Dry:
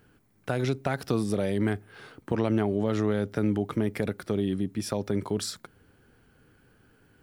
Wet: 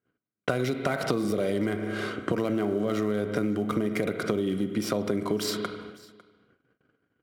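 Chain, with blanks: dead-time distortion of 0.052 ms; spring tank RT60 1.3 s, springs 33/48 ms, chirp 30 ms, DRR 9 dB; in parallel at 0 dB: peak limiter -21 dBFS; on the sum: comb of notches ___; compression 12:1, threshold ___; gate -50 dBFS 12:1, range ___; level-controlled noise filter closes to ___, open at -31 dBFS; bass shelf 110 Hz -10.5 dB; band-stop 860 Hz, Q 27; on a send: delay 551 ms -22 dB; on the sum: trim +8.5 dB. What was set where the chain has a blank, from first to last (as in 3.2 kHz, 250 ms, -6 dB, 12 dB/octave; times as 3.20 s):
860 Hz, -30 dBFS, -38 dB, 2.9 kHz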